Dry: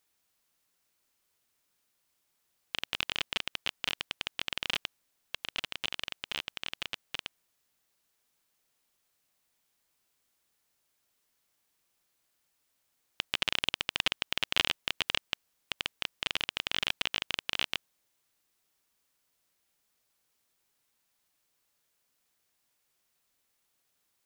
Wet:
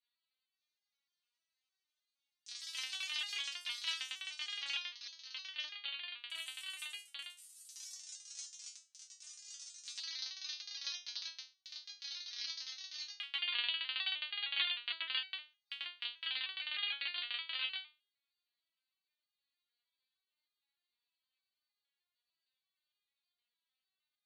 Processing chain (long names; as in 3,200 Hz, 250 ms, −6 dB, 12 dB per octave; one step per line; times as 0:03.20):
first difference
brick-wall band-pass 130–4,700 Hz
dynamic equaliser 1,500 Hz, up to +6 dB, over −56 dBFS, Q 0.79
delay with pitch and tempo change per echo 545 ms, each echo +6 semitones, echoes 3, each echo −6 dB
step-sequenced resonator 6.5 Hz 240–410 Hz
level +14 dB